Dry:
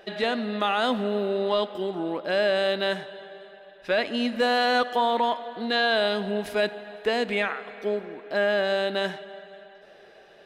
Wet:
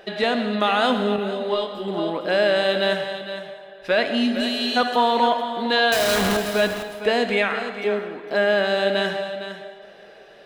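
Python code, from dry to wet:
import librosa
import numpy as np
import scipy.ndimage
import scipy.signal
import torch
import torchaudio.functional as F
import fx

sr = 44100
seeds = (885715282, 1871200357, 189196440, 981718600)

y = fx.spec_repair(x, sr, seeds[0], start_s=4.14, length_s=0.6, low_hz=380.0, high_hz=2400.0, source='before')
y = fx.schmitt(y, sr, flips_db=-44.5, at=(5.92, 6.37))
y = y + 10.0 ** (-10.5 / 20.0) * np.pad(y, (int(458 * sr / 1000.0), 0))[:len(y)]
y = fx.rev_gated(y, sr, seeds[1], gate_ms=240, shape='flat', drr_db=8.0)
y = fx.detune_double(y, sr, cents=12, at=(1.16, 1.88))
y = y * librosa.db_to_amplitude(4.0)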